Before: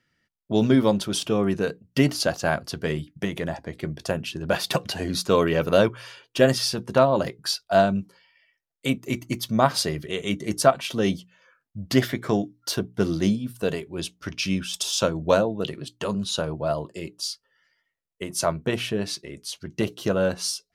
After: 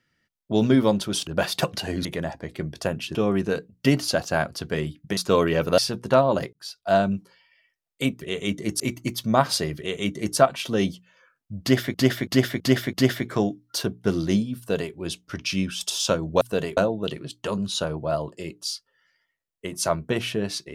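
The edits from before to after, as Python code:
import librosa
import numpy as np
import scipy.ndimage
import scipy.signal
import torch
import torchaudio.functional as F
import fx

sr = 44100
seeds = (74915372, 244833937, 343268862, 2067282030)

y = fx.edit(x, sr, fx.swap(start_s=1.27, length_s=2.02, other_s=4.39, other_length_s=0.78),
    fx.cut(start_s=5.78, length_s=0.84),
    fx.fade_in_span(start_s=7.37, length_s=0.5),
    fx.duplicate(start_s=10.03, length_s=0.59, to_s=9.05),
    fx.repeat(start_s=11.86, length_s=0.33, count=5),
    fx.duplicate(start_s=13.51, length_s=0.36, to_s=15.34), tone=tone)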